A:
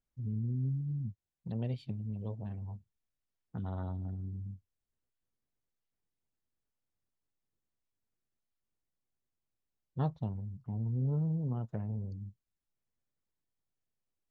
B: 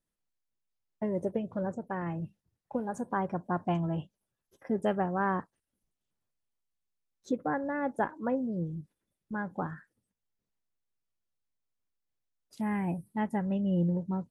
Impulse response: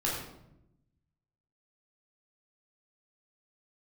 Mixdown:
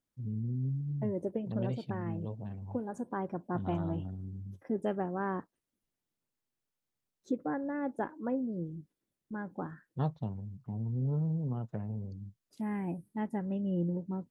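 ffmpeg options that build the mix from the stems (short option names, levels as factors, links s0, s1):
-filter_complex "[0:a]highpass=99,volume=1.12[s0];[1:a]equalizer=f=310:w=1.1:g=7.5,volume=0.422[s1];[s0][s1]amix=inputs=2:normalize=0"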